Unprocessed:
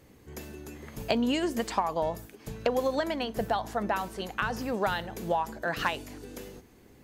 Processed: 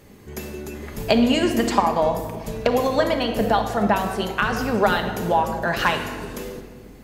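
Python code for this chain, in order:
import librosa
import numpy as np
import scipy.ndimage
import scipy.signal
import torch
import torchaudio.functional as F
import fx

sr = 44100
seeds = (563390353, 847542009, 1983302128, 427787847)

y = fx.room_shoebox(x, sr, seeds[0], volume_m3=2100.0, walls='mixed', distance_m=1.3)
y = y * 10.0 ** (7.5 / 20.0)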